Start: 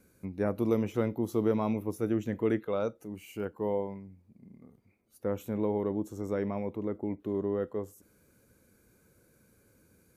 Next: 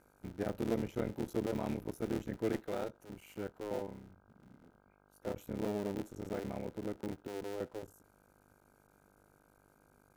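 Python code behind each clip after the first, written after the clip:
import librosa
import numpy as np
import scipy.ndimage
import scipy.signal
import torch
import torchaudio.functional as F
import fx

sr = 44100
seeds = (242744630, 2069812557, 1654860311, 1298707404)

y = fx.cycle_switch(x, sr, every=3, mode='muted')
y = fx.dmg_buzz(y, sr, base_hz=50.0, harmonics=32, level_db=-63.0, tilt_db=-1, odd_only=False)
y = fx.notch(y, sr, hz=1100.0, q=7.4)
y = y * 10.0 ** (-5.5 / 20.0)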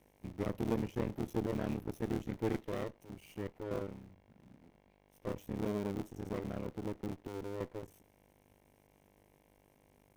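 y = fx.lower_of_two(x, sr, delay_ms=0.34)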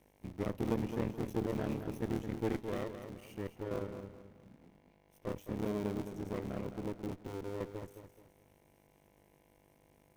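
y = fx.echo_feedback(x, sr, ms=214, feedback_pct=34, wet_db=-9.0)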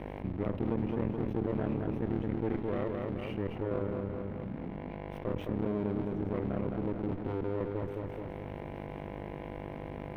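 y = fx.air_absorb(x, sr, metres=480.0)
y = fx.env_flatten(y, sr, amount_pct=70)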